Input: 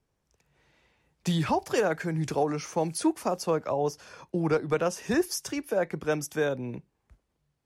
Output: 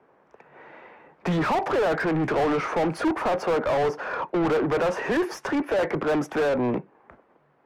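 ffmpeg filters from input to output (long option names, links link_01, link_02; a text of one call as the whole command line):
ffmpeg -i in.wav -filter_complex "[0:a]acrossover=split=180 2100:gain=0.224 1 0.0794[link_01][link_02][link_03];[link_01][link_02][link_03]amix=inputs=3:normalize=0,asplit=2[link_04][link_05];[link_05]highpass=frequency=720:poles=1,volume=35dB,asoftclip=type=tanh:threshold=-14.5dB[link_06];[link_04][link_06]amix=inputs=2:normalize=0,lowpass=frequency=1300:poles=1,volume=-6dB,volume=-1dB" out.wav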